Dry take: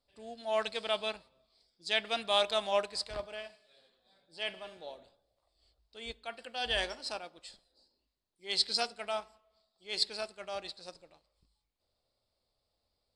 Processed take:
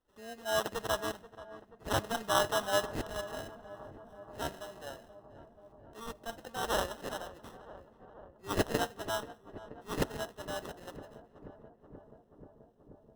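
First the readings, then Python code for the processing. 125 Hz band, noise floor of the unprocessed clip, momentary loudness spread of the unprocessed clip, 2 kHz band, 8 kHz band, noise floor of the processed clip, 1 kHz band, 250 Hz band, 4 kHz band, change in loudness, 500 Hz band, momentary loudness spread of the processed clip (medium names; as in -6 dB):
no reading, -83 dBFS, 19 LU, 0.0 dB, +5.0 dB, -63 dBFS, +2.5 dB, +9.5 dB, -7.0 dB, -1.5 dB, +0.5 dB, 22 LU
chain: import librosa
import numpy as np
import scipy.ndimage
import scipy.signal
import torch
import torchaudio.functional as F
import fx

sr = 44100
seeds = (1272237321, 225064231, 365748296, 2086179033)

y = fx.sample_hold(x, sr, seeds[0], rate_hz=2300.0, jitter_pct=0)
y = fx.echo_filtered(y, sr, ms=482, feedback_pct=83, hz=1400.0, wet_db=-15.0)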